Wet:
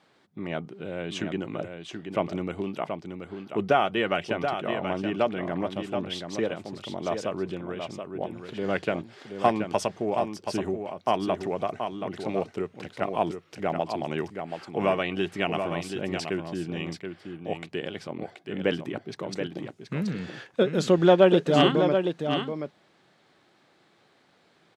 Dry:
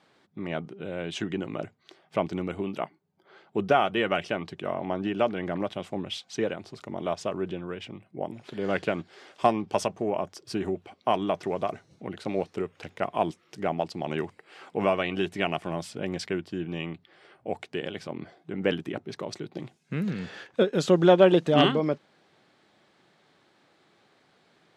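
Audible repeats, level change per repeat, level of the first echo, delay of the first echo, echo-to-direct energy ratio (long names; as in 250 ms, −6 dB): 1, repeats not evenly spaced, −7.0 dB, 728 ms, −7.0 dB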